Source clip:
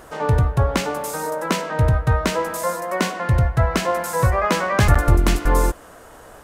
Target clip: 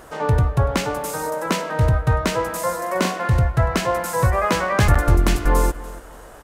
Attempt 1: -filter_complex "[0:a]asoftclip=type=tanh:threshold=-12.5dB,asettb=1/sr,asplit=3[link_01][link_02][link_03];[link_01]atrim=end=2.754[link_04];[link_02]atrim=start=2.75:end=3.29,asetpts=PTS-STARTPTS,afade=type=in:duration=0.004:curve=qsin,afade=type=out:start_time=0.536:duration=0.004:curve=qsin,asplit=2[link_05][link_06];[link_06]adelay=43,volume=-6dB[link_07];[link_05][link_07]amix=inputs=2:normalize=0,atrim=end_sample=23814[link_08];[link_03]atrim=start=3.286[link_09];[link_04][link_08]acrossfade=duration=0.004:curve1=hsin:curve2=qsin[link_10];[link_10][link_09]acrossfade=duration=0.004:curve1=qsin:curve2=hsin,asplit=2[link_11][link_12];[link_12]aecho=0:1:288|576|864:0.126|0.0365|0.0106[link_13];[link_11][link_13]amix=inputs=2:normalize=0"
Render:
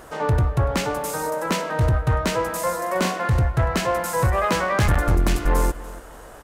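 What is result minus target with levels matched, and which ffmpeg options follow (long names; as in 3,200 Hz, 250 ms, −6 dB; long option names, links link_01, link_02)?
soft clipping: distortion +15 dB
-filter_complex "[0:a]asoftclip=type=tanh:threshold=-2dB,asettb=1/sr,asplit=3[link_01][link_02][link_03];[link_01]atrim=end=2.754[link_04];[link_02]atrim=start=2.75:end=3.29,asetpts=PTS-STARTPTS,afade=type=in:duration=0.004:curve=qsin,afade=type=out:start_time=0.536:duration=0.004:curve=qsin,asplit=2[link_05][link_06];[link_06]adelay=43,volume=-6dB[link_07];[link_05][link_07]amix=inputs=2:normalize=0,atrim=end_sample=23814[link_08];[link_03]atrim=start=3.286[link_09];[link_04][link_08]acrossfade=duration=0.004:curve1=hsin:curve2=qsin[link_10];[link_10][link_09]acrossfade=duration=0.004:curve1=qsin:curve2=hsin,asplit=2[link_11][link_12];[link_12]aecho=0:1:288|576|864:0.126|0.0365|0.0106[link_13];[link_11][link_13]amix=inputs=2:normalize=0"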